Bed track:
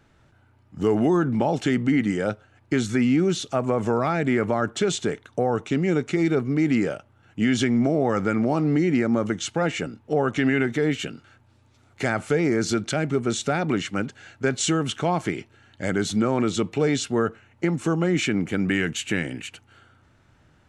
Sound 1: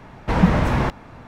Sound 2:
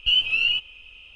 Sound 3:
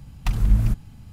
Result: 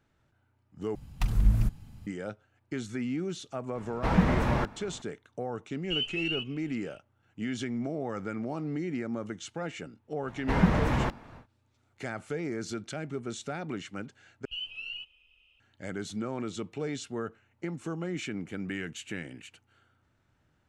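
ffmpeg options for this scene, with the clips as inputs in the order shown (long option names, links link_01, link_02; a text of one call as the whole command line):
ffmpeg -i bed.wav -i cue0.wav -i cue1.wav -i cue2.wav -filter_complex "[1:a]asplit=2[link_01][link_02];[2:a]asplit=2[link_03][link_04];[0:a]volume=-12.5dB,asplit=3[link_05][link_06][link_07];[link_05]atrim=end=0.954[link_08];[3:a]atrim=end=1.12,asetpts=PTS-STARTPTS,volume=-5dB[link_09];[link_06]atrim=start=2.066:end=14.454[link_10];[link_04]atrim=end=1.15,asetpts=PTS-STARTPTS,volume=-18dB[link_11];[link_07]atrim=start=15.596[link_12];[link_01]atrim=end=1.27,asetpts=PTS-STARTPTS,volume=-7.5dB,afade=type=in:duration=0.004:curve=hsin,afade=type=out:start_time=1.266:duration=0.004:curve=hsin,adelay=3750[link_13];[link_03]atrim=end=1.15,asetpts=PTS-STARTPTS,volume=-12dB,afade=type=in:duration=0.004:curve=hsin,afade=type=out:start_time=1.146:duration=0.004:curve=hsin,adelay=5840[link_14];[link_02]atrim=end=1.27,asetpts=PTS-STARTPTS,volume=-7.5dB,afade=type=in:duration=0.1,afade=type=out:start_time=1.17:duration=0.1,adelay=10200[link_15];[link_08][link_09]acrossfade=duration=0.004:curve1=hsin:curve2=hsin[link_16];[link_16][link_10]acrossfade=duration=0.004:curve1=hsin:curve2=hsin[link_17];[link_17][link_11]acrossfade=duration=0.004:curve1=hsin:curve2=hsin[link_18];[link_18][link_12]acrossfade=duration=0.004:curve1=hsin:curve2=hsin[link_19];[link_19][link_13][link_14][link_15]amix=inputs=4:normalize=0" out.wav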